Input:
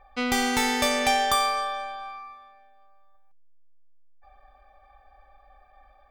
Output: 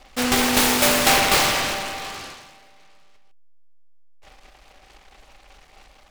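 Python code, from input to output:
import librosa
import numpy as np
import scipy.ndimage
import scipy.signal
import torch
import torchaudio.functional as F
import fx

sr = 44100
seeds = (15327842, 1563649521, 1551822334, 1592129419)

y = fx.high_shelf(x, sr, hz=4800.0, db=7.0, at=(0.54, 1.2))
y = fx.noise_mod_delay(y, sr, seeds[0], noise_hz=1500.0, depth_ms=0.22)
y = y * librosa.db_to_amplitude(5.0)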